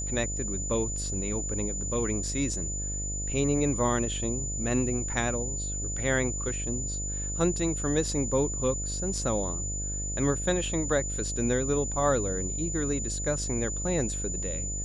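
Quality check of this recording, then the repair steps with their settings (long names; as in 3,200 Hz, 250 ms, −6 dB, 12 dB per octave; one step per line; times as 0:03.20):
mains buzz 50 Hz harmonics 14 −35 dBFS
whistle 7,000 Hz −33 dBFS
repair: hum removal 50 Hz, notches 14
notch filter 7,000 Hz, Q 30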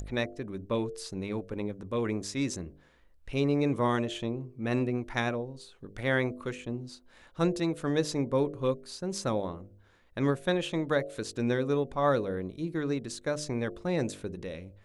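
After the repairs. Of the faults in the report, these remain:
none of them is left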